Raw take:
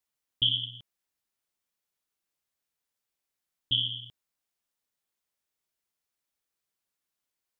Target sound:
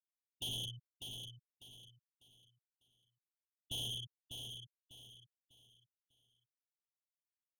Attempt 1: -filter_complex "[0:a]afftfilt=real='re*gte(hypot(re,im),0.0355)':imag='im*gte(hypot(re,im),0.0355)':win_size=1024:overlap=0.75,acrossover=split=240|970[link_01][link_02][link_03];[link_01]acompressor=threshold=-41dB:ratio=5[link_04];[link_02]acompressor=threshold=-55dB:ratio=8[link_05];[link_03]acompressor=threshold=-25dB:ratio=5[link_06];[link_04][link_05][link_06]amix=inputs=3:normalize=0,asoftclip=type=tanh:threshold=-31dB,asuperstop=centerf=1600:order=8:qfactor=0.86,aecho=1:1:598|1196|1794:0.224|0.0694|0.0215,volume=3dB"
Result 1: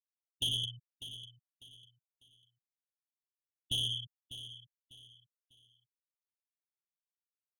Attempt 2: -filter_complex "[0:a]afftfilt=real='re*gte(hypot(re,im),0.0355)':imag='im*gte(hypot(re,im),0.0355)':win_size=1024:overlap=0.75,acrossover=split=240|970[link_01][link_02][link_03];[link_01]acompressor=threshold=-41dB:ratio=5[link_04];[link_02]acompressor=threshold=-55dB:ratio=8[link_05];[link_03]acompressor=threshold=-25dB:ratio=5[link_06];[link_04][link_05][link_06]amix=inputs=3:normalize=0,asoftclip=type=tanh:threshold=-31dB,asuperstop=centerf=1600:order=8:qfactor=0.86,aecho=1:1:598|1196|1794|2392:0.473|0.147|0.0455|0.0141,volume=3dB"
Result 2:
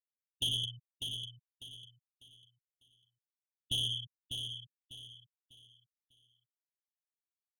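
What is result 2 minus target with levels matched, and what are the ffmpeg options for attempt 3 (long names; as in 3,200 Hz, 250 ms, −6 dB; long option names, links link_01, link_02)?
soft clipping: distortion −5 dB
-filter_complex "[0:a]afftfilt=real='re*gte(hypot(re,im),0.0355)':imag='im*gte(hypot(re,im),0.0355)':win_size=1024:overlap=0.75,acrossover=split=240|970[link_01][link_02][link_03];[link_01]acompressor=threshold=-41dB:ratio=5[link_04];[link_02]acompressor=threshold=-55dB:ratio=8[link_05];[link_03]acompressor=threshold=-25dB:ratio=5[link_06];[link_04][link_05][link_06]amix=inputs=3:normalize=0,asoftclip=type=tanh:threshold=-41.5dB,asuperstop=centerf=1600:order=8:qfactor=0.86,aecho=1:1:598|1196|1794|2392:0.473|0.147|0.0455|0.0141,volume=3dB"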